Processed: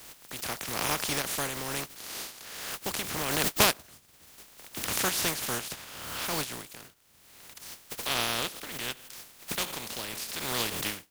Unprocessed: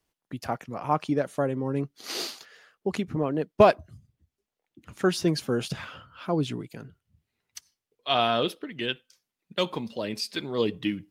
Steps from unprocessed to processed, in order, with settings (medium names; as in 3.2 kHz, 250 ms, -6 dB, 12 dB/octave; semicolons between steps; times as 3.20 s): spectral contrast reduction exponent 0.24; swell ahead of each attack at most 35 dB/s; trim -6 dB